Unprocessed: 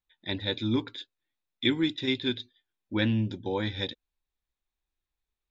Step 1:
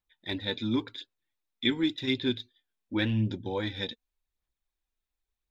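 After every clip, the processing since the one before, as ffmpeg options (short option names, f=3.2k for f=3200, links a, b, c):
-af "aphaser=in_gain=1:out_gain=1:delay=4.6:decay=0.38:speed=0.9:type=sinusoidal,volume=-2dB"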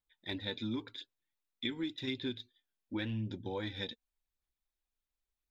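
-af "acompressor=threshold=-29dB:ratio=5,volume=-4.5dB"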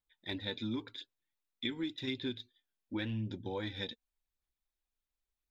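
-af anull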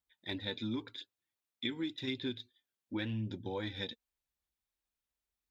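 -af "highpass=46"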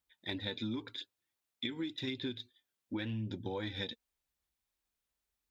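-af "acompressor=threshold=-37dB:ratio=6,volume=3dB"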